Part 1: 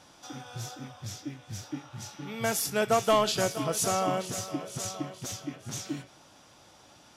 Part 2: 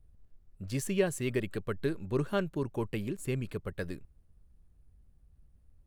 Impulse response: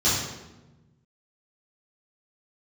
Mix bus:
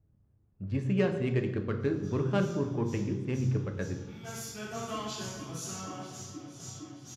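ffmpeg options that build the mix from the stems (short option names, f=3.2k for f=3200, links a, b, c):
-filter_complex "[0:a]equalizer=f=570:w=2.5:g=-8,adelay=1800,volume=-18.5dB,asplit=2[a][b];[b]volume=-8dB[c];[1:a]adynamicsmooth=sensitivity=2.5:basefreq=1.6k,volume=1.5dB,asplit=3[d][e][f];[e]volume=-20.5dB[g];[f]apad=whole_len=395254[h];[a][h]sidechaingate=range=-33dB:threshold=-57dB:ratio=16:detection=peak[i];[2:a]atrim=start_sample=2205[j];[c][g]amix=inputs=2:normalize=0[k];[k][j]afir=irnorm=-1:irlink=0[l];[i][d][l]amix=inputs=3:normalize=0,highpass=95"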